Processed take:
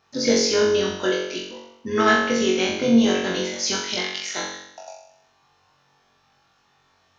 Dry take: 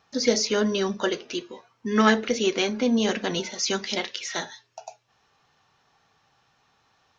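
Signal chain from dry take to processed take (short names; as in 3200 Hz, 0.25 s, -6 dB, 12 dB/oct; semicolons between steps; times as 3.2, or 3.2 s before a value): AM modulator 110 Hz, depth 25%; flutter echo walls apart 3.7 m, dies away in 0.77 s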